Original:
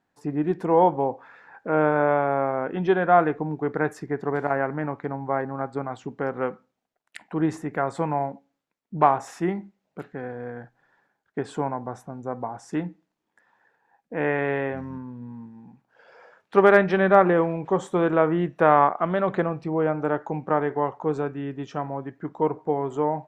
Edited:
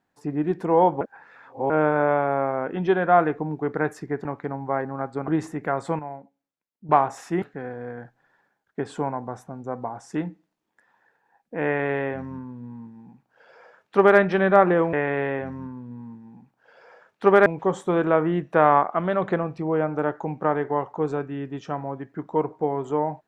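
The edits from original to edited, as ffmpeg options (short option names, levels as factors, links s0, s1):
-filter_complex "[0:a]asplit=10[s0][s1][s2][s3][s4][s5][s6][s7][s8][s9];[s0]atrim=end=1.012[s10];[s1]atrim=start=1.008:end=1.702,asetpts=PTS-STARTPTS,areverse[s11];[s2]atrim=start=1.698:end=4.252[s12];[s3]atrim=start=4.848:end=5.882[s13];[s4]atrim=start=7.378:end=8.092[s14];[s5]atrim=start=8.088:end=8.992,asetpts=PTS-STARTPTS,volume=0.316[s15];[s6]atrim=start=8.988:end=9.522[s16];[s7]atrim=start=10.008:end=17.522[s17];[s8]atrim=start=14.238:end=16.772[s18];[s9]atrim=start=17.518[s19];[s10][s11]acrossfade=d=0.004:c1=hsin:c2=hsin[s20];[s20][s12]acrossfade=d=0.004:c1=hsin:c2=hsin[s21];[s21][s13]acrossfade=d=0.004:c1=hsin:c2=hsin[s22];[s22][s14]acrossfade=d=0.004:c1=hsin:c2=hsin[s23];[s23][s15]acrossfade=d=0.004:c1=hsin:c2=hsin[s24];[s24][s16]acrossfade=d=0.004:c1=hsin:c2=hsin[s25];[s25][s17]acrossfade=d=0.004:c1=hsin:c2=hsin[s26];[s26][s18]acrossfade=d=0.004:c1=hsin:c2=hsin[s27];[s27][s19]acrossfade=d=0.004:c1=hsin:c2=hsin"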